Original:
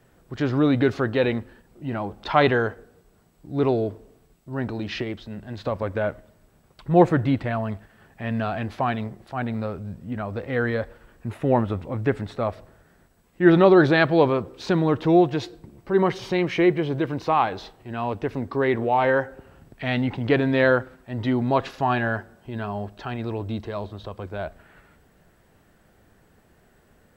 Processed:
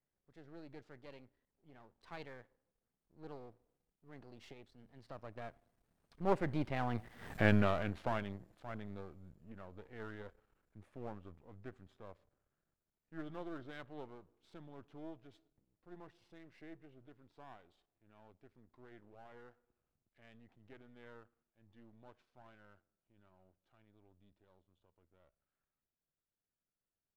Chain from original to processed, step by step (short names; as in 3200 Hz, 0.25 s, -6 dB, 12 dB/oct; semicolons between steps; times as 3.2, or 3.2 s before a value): half-wave gain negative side -12 dB; Doppler pass-by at 7.33, 34 m/s, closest 2.3 m; gain +10 dB